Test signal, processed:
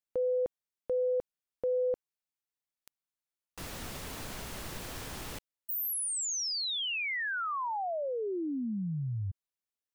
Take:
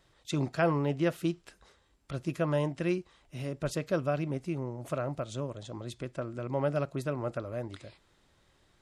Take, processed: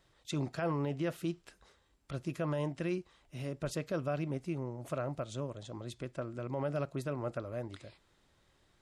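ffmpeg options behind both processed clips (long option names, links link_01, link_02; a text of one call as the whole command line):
ffmpeg -i in.wav -af "alimiter=limit=-23dB:level=0:latency=1:release=30,volume=-3dB" out.wav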